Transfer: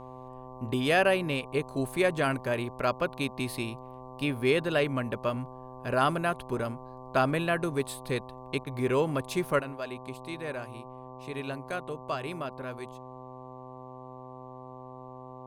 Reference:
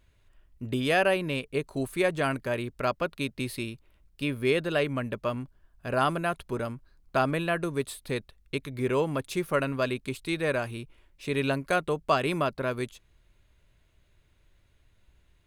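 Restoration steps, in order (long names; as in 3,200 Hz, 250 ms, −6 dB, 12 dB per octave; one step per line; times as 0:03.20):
hum removal 128.1 Hz, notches 9
repair the gap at 0:08.64, 23 ms
level correction +9 dB, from 0:09.59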